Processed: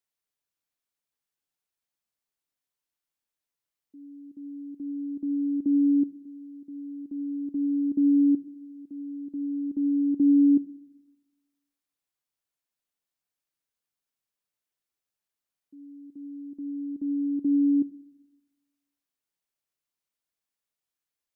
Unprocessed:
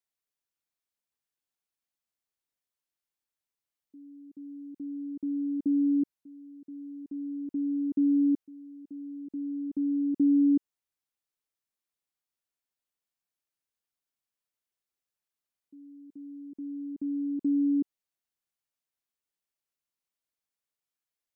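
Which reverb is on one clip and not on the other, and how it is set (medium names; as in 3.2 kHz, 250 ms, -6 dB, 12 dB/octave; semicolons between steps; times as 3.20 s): simulated room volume 2200 m³, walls furnished, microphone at 0.39 m; trim +1 dB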